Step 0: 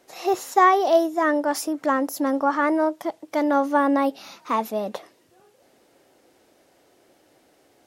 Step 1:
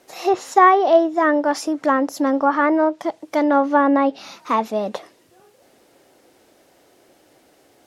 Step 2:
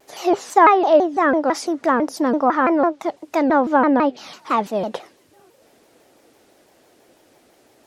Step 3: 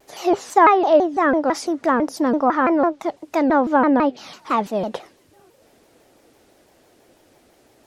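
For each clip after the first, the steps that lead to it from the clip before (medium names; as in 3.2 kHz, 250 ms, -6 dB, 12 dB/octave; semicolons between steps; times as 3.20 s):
word length cut 12-bit, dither triangular; low-pass that closes with the level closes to 2.9 kHz, closed at -15.5 dBFS; trim +4 dB
vibrato with a chosen wave saw down 6 Hz, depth 250 cents
bass shelf 95 Hz +11 dB; trim -1 dB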